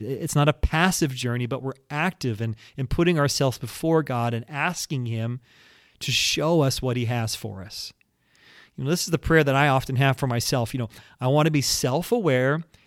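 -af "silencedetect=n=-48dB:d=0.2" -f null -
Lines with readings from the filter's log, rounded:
silence_start: 8.01
silence_end: 8.35 | silence_duration: 0.34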